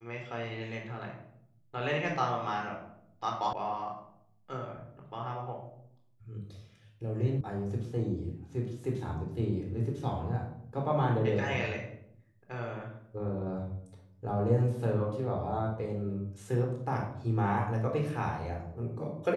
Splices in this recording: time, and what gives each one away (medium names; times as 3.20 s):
3.53 s: sound stops dead
7.41 s: sound stops dead